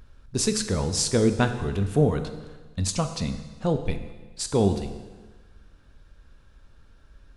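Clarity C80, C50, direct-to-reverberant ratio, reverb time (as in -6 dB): 11.0 dB, 9.5 dB, 8.0 dB, 1.3 s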